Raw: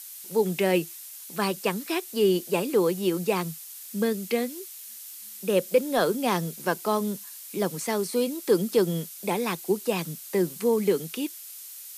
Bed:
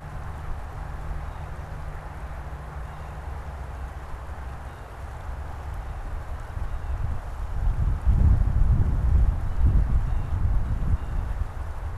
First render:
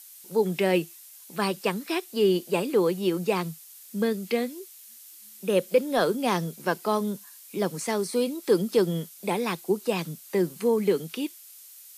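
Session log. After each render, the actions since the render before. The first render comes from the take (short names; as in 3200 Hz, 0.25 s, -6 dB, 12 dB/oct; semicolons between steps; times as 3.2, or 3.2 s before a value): noise print and reduce 6 dB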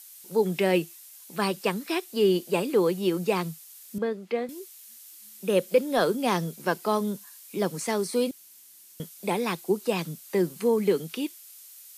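3.98–4.49 band-pass 770 Hz, Q 0.61; 8.31–9 room tone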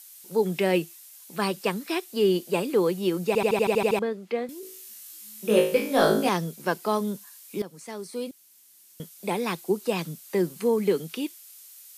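3.27 stutter in place 0.08 s, 9 plays; 4.61–6.29 flutter echo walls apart 3.2 m, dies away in 0.48 s; 7.62–9.5 fade in linear, from -15 dB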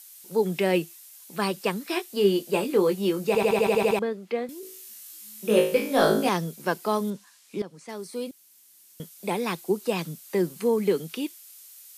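1.88–3.93 doubler 20 ms -7 dB; 7.1–7.89 air absorption 61 m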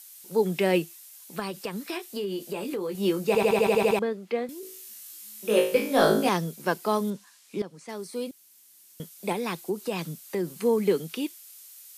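1.39–2.95 compressor, threshold -28 dBFS; 5.14–5.75 bell 110 Hz -15 dB 1.5 oct; 9.32–10.51 compressor 2:1, threshold -27 dBFS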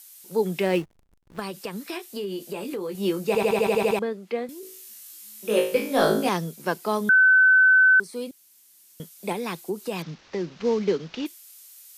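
0.62–1.39 backlash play -32.5 dBFS; 7.09–8 bleep 1520 Hz -12.5 dBFS; 10.02–11.26 CVSD 32 kbps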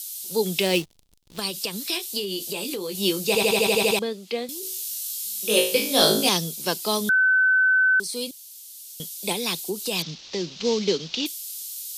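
resonant high shelf 2500 Hz +12.5 dB, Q 1.5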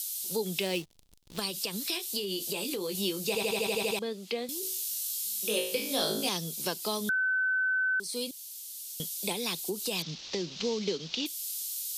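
compressor 2.5:1, threshold -32 dBFS, peak gain reduction 12.5 dB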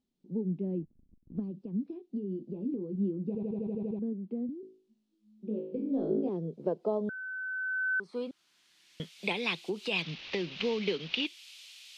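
low-pass sweep 250 Hz -> 2500 Hz, 5.53–9.35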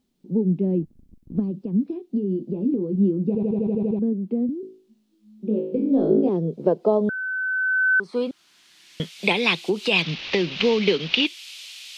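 gain +11.5 dB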